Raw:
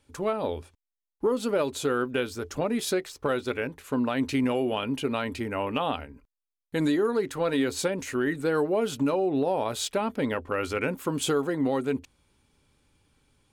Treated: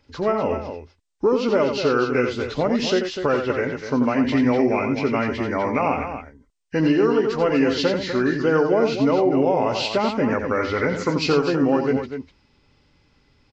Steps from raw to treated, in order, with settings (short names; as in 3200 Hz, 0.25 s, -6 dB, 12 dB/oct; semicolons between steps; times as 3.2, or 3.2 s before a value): nonlinear frequency compression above 1500 Hz 1.5:1; on a send: loudspeakers at several distances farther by 30 m -7 dB, 85 m -9 dB; on the sum: gain +6 dB